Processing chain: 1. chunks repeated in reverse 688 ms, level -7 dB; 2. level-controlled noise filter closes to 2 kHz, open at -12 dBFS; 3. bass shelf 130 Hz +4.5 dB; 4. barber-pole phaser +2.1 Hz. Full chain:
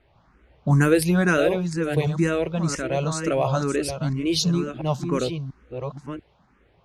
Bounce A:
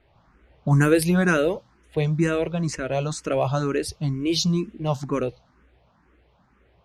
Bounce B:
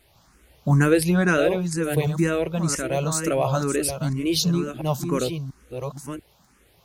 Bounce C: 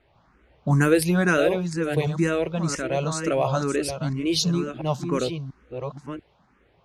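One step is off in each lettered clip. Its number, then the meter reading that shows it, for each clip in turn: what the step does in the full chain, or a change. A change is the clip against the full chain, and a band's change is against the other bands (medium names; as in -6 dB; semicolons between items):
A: 1, momentary loudness spread change -6 LU; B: 2, 8 kHz band +4.5 dB; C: 3, 125 Hz band -2.0 dB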